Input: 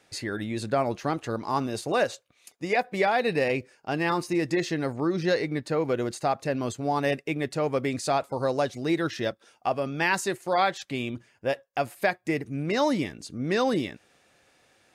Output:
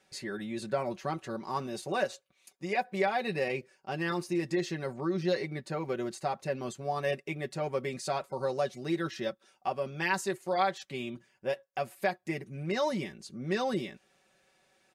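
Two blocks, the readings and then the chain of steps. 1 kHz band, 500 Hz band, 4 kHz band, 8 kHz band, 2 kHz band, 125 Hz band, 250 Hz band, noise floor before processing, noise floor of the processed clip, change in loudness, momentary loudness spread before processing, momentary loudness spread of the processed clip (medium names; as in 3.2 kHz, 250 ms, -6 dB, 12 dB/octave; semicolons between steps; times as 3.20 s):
-5.5 dB, -5.5 dB, -6.0 dB, -6.0 dB, -6.0 dB, -5.5 dB, -6.5 dB, -64 dBFS, -71 dBFS, -6.0 dB, 7 LU, 8 LU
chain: comb 5.3 ms, depth 76%; trim -8 dB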